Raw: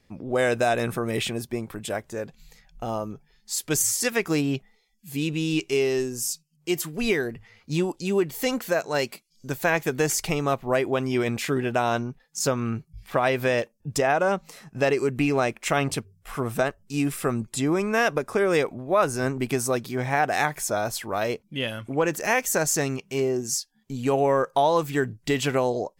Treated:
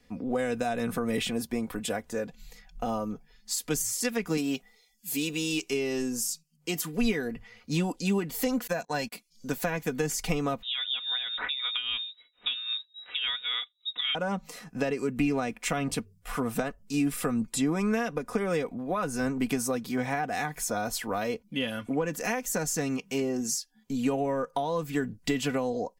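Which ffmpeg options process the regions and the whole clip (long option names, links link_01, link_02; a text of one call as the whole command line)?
ffmpeg -i in.wav -filter_complex "[0:a]asettb=1/sr,asplit=3[link_01][link_02][link_03];[link_01]atrim=end=4.374[link_04];[link_02]atrim=start=4.37:end=5.7,asetpts=PTS-STARTPTS,afade=type=in:duration=0.004:curve=qsin,afade=type=out:start_time=1.326:duration=0.004:curve=qsin,bass=frequency=250:gain=-9,treble=frequency=4000:gain=8,acrusher=bits=8:mode=log:mix=0:aa=0.000001[link_05];[link_03]atrim=start=5.696[link_06];[link_04][link_05]acrossfade=duration=0.004:curve1=hsin:curve2=qsin[link_07];[link_07][link_06]acrossfade=duration=0.004:curve1=qsin:curve2=hsin,asettb=1/sr,asplit=3[link_08][link_09][link_10];[link_08]atrim=end=8.674[link_11];[link_09]atrim=start=8.67:end=9.12,asetpts=PTS-STARTPTS,afade=type=in:duration=0.004:curve=qsin,afade=type=out:start_time=0.446:duration=0.004:curve=qsin,agate=range=-36dB:threshold=-35dB:ratio=16:release=100:detection=peak,aecho=1:1:1.2:0.42,atrim=end_sample=19845[link_12];[link_10]atrim=start=9.116[link_13];[link_11][link_12]acrossfade=duration=0.004:curve1=hsin:curve2=qsin[link_14];[link_14][link_13]acrossfade=duration=0.004:curve1=qsin:curve2=hsin,asettb=1/sr,asplit=3[link_15][link_16][link_17];[link_15]atrim=end=10.624[link_18];[link_16]atrim=start=10.62:end=14.15,asetpts=PTS-STARTPTS,afade=type=in:duration=0.004:curve=qsin,afade=type=out:start_time=3.526:duration=0.004:curve=qsin,tremolo=f=3.7:d=0.64,lowpass=frequency=3300:width_type=q:width=0.5098,lowpass=frequency=3300:width_type=q:width=0.6013,lowpass=frequency=3300:width_type=q:width=0.9,lowpass=frequency=3300:width_type=q:width=2.563,afreqshift=-3900[link_19];[link_17]atrim=start=14.146[link_20];[link_18][link_19]acrossfade=duration=0.004:curve1=hsin:curve2=qsin[link_21];[link_21][link_20]acrossfade=duration=0.004:curve1=qsin:curve2=hsin,aecho=1:1:4.1:0.63,acrossover=split=220[link_22][link_23];[link_23]acompressor=threshold=-28dB:ratio=6[link_24];[link_22][link_24]amix=inputs=2:normalize=0" out.wav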